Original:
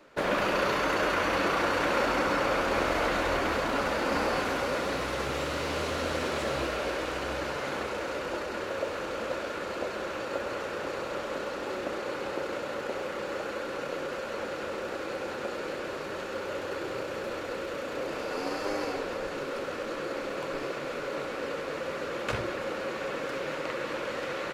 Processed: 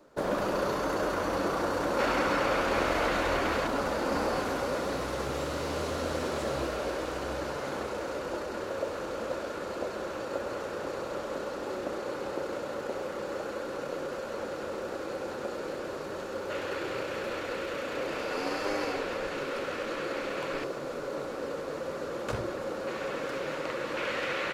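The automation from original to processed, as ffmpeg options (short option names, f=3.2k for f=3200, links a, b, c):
-af "asetnsamples=n=441:p=0,asendcmd='1.99 equalizer g -1;3.67 equalizer g -7;16.5 equalizer g 2.5;20.64 equalizer g -9;22.87 equalizer g -2;23.97 equalizer g 6',equalizer=f=2.4k:t=o:w=1.5:g=-12"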